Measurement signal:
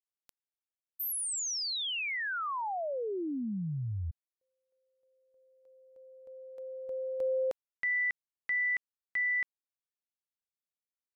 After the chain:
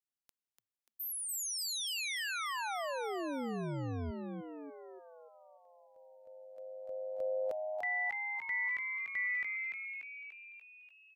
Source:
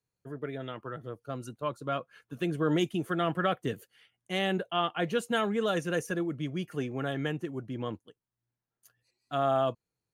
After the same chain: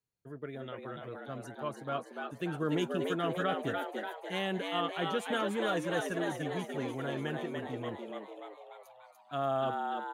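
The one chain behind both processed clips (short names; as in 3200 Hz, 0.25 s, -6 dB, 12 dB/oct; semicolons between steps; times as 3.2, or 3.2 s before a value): frequency-shifting echo 0.292 s, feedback 59%, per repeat +100 Hz, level -4 dB; gain -5 dB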